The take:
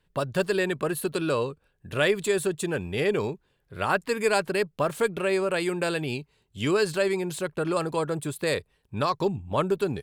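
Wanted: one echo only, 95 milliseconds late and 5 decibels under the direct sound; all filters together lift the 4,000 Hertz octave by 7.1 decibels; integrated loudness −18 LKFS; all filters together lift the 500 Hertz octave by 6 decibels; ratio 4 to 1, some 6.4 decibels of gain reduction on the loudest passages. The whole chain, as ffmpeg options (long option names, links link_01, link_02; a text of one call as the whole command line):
ffmpeg -i in.wav -af "equalizer=frequency=500:width_type=o:gain=7.5,equalizer=frequency=4000:width_type=o:gain=8.5,acompressor=threshold=-21dB:ratio=4,aecho=1:1:95:0.562,volume=7dB" out.wav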